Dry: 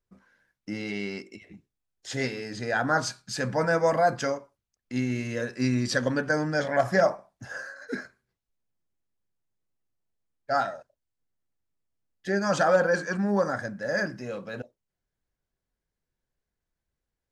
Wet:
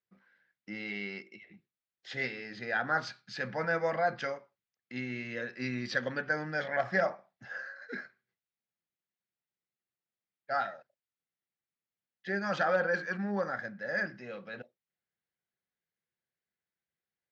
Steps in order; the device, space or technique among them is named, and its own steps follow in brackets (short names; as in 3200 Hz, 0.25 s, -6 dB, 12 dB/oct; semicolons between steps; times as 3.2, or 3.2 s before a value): kitchen radio (speaker cabinet 200–4300 Hz, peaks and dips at 280 Hz -10 dB, 430 Hz -5 dB, 620 Hz -5 dB, 1000 Hz -7 dB, 2000 Hz +4 dB); gain -3.5 dB